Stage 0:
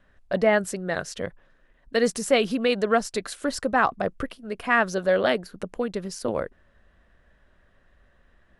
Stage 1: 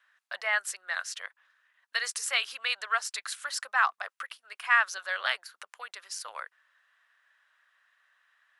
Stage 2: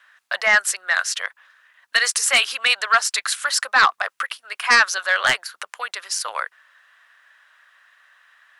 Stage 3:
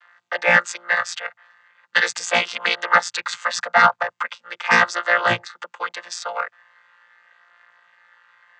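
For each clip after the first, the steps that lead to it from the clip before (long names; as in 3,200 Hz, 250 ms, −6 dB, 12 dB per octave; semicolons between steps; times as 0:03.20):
high-pass filter 1,100 Hz 24 dB per octave
sine wavefolder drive 8 dB, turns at −9 dBFS; level +1.5 dB
channel vocoder with a chord as carrier bare fifth, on A#2; level +1 dB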